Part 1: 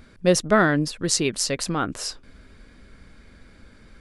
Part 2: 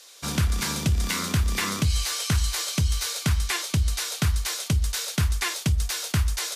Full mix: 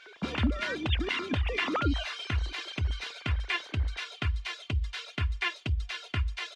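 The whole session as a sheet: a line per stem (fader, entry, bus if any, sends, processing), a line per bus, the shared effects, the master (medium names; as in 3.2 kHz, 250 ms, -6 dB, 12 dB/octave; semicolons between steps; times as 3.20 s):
-2.0 dB, 0.00 s, no send, formants replaced by sine waves; compressor with a negative ratio -32 dBFS, ratio -1
-8.0 dB, 0.00 s, no send, reverb removal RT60 1.2 s; resonant low-pass 2.8 kHz, resonance Q 2.1; comb 2.9 ms, depth 68%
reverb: none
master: none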